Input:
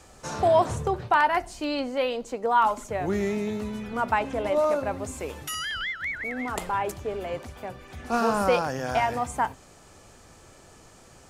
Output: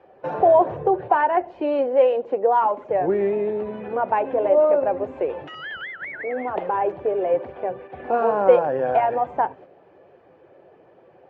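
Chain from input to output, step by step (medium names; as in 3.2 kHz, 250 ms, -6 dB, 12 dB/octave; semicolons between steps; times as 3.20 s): coarse spectral quantiser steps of 15 dB; gate -46 dBFS, range -7 dB; in parallel at +2 dB: compression, threshold -33 dBFS, peak gain reduction 16.5 dB; on the sum: cabinet simulation 190–2200 Hz, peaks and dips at 230 Hz -8 dB, 370 Hz +6 dB, 530 Hz +8 dB, 750 Hz +4 dB, 1.3 kHz -8 dB, 2.1 kHz -6 dB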